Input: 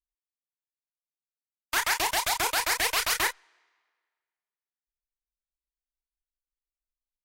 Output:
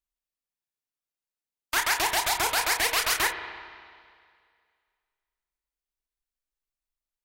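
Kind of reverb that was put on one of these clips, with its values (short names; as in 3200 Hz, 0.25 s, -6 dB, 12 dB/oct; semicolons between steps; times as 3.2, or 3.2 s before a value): spring tank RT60 2.1 s, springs 30/56/60 ms, chirp 35 ms, DRR 8.5 dB; gain +1 dB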